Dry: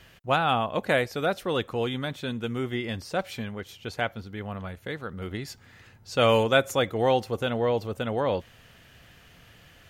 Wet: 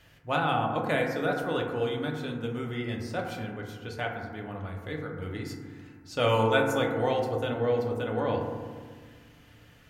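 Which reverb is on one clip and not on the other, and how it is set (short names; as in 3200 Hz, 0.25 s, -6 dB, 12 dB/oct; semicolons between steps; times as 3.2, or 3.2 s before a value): FDN reverb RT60 1.6 s, low-frequency decay 1.4×, high-frequency decay 0.25×, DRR 0 dB; gain -6 dB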